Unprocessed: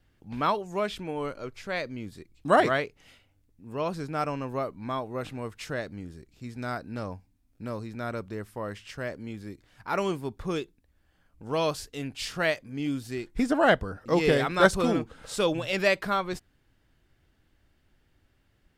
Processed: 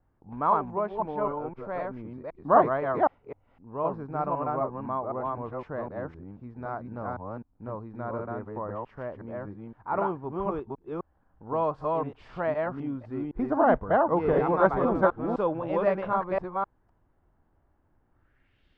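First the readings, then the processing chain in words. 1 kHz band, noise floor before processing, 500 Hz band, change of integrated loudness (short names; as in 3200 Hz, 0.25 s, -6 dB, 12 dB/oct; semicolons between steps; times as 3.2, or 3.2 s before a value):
+3.5 dB, -68 dBFS, +1.5 dB, +0.5 dB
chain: reverse delay 0.256 s, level -1 dB; low-pass sweep 980 Hz -> 3500 Hz, 18.09–18.65; gain -4 dB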